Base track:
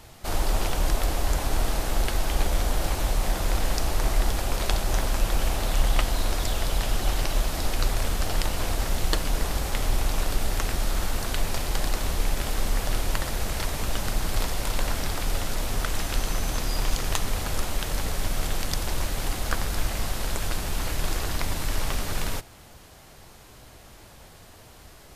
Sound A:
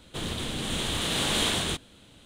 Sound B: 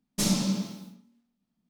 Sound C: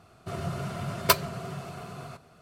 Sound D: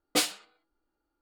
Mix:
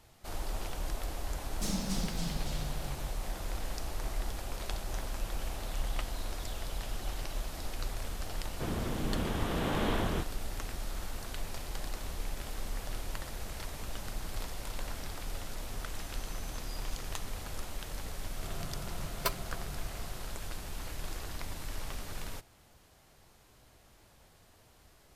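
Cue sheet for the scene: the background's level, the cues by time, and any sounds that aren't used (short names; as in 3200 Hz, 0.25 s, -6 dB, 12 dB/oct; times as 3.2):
base track -12.5 dB
1.43 add B -10.5 dB + echoes that change speed 0.254 s, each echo -2 st, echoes 3
8.46 add A -1 dB + LPF 1400 Hz
18.16 add C -11.5 dB
not used: D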